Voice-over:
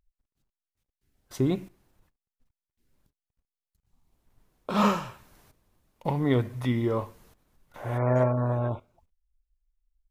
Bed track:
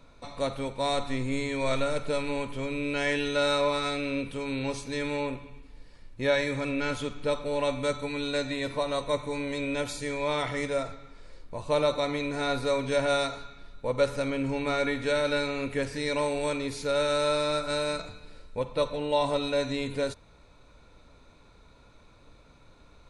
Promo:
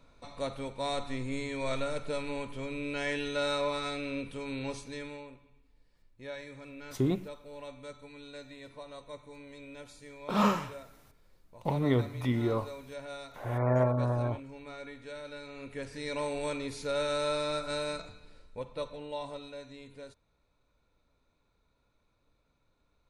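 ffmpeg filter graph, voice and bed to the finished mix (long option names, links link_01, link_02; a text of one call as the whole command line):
ffmpeg -i stem1.wav -i stem2.wav -filter_complex "[0:a]adelay=5600,volume=-3dB[link_01];[1:a]volume=6.5dB,afade=type=out:start_time=4.73:duration=0.52:silence=0.266073,afade=type=in:start_time=15.41:duration=0.96:silence=0.251189,afade=type=out:start_time=17.8:duration=1.81:silence=0.223872[link_02];[link_01][link_02]amix=inputs=2:normalize=0" out.wav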